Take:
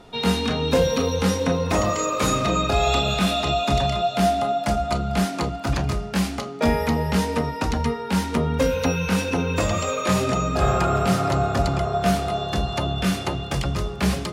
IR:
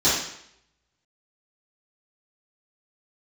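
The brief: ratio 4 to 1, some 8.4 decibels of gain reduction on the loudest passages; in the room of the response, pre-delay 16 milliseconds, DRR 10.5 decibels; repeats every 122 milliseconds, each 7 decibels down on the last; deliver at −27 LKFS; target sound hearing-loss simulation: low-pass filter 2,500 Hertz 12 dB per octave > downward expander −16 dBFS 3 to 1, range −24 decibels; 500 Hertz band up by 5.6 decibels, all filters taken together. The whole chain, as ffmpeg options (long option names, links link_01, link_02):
-filter_complex "[0:a]equalizer=frequency=500:width_type=o:gain=7,acompressor=threshold=-19dB:ratio=4,aecho=1:1:122|244|366|488|610:0.447|0.201|0.0905|0.0407|0.0183,asplit=2[link_01][link_02];[1:a]atrim=start_sample=2205,adelay=16[link_03];[link_02][link_03]afir=irnorm=-1:irlink=0,volume=-27.5dB[link_04];[link_01][link_04]amix=inputs=2:normalize=0,lowpass=2500,agate=range=-24dB:threshold=-16dB:ratio=3,volume=-2.5dB"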